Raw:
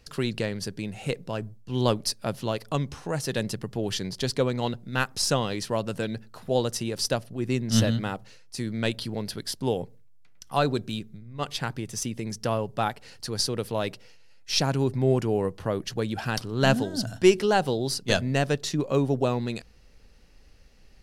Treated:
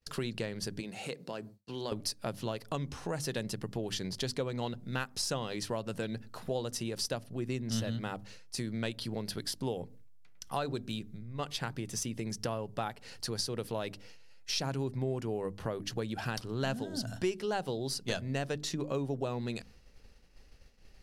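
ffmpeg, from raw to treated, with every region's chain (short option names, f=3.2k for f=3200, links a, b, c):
-filter_complex "[0:a]asettb=1/sr,asplit=3[a][b][c];[a]atrim=end=0.804[d];[b]atrim=start=0.8:end=1.92,asetpts=PTS-STARTPTS,afade=t=in:d=0.004:c=qsin,afade=t=out:st=1.116:d=0.004:c=qsin,highpass=210,equalizer=f=4.4k:t=o:w=0.2:g=8,acompressor=threshold=-38dB:ratio=2:attack=3.2:release=140:knee=1:detection=peak[e];[c]atrim=start=1.916[f];[d][e]acrossfade=d=0.004:c1=hsin:c2=qsin[g];[g][f]acrossfade=d=0.004:c1=qsin:c2=hsin,bandreject=f=50:t=h:w=6,bandreject=f=100:t=h:w=6,bandreject=f=150:t=h:w=6,bandreject=f=200:t=h:w=6,bandreject=f=250:t=h:w=6,bandreject=f=300:t=h:w=6,agate=range=-33dB:threshold=-49dB:ratio=3:detection=peak,acompressor=threshold=-34dB:ratio=3"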